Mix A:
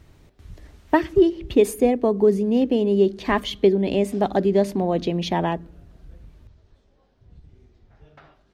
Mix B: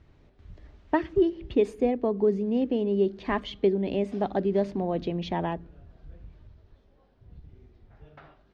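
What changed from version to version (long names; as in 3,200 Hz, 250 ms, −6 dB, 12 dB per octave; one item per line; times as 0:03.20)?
speech −6.0 dB
master: add high-frequency loss of the air 150 metres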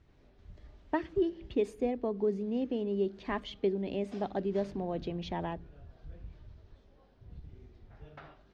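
speech −7.0 dB
master: add high-shelf EQ 5,900 Hz +7 dB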